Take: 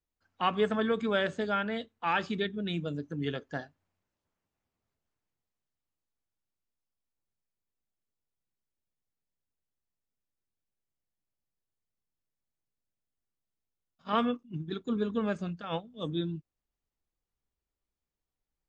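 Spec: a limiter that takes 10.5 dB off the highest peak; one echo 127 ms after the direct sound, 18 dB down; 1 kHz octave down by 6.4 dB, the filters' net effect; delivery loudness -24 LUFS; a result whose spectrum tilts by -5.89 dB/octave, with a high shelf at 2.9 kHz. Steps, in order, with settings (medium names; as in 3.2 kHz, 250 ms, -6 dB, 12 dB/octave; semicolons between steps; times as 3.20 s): peaking EQ 1 kHz -7.5 dB; treble shelf 2.9 kHz -7.5 dB; peak limiter -28 dBFS; delay 127 ms -18 dB; trim +14 dB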